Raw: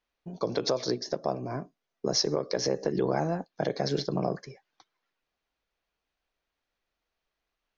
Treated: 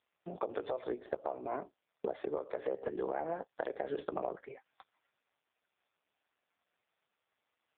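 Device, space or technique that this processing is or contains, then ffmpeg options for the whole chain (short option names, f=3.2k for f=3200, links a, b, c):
voicemail: -filter_complex "[0:a]asplit=3[a][b][c];[a]afade=t=out:st=0.8:d=0.02[d];[b]equalizer=f=6k:t=o:w=1:g=-3.5,afade=t=in:st=0.8:d=0.02,afade=t=out:st=2.25:d=0.02[e];[c]afade=t=in:st=2.25:d=0.02[f];[d][e][f]amix=inputs=3:normalize=0,highpass=420,lowpass=2.9k,acompressor=threshold=-40dB:ratio=6,volume=8dB" -ar 8000 -c:a libopencore_amrnb -b:a 5150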